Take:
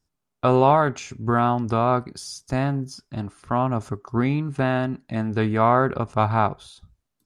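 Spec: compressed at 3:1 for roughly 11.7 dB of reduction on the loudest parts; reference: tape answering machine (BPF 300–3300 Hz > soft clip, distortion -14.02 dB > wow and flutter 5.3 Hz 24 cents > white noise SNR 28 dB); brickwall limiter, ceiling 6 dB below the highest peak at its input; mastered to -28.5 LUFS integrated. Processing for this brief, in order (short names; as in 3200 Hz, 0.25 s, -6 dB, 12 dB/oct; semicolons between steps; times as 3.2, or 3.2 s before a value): compressor 3:1, threshold -29 dBFS; limiter -21 dBFS; BPF 300–3300 Hz; soft clip -25.5 dBFS; wow and flutter 5.3 Hz 24 cents; white noise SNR 28 dB; gain +9.5 dB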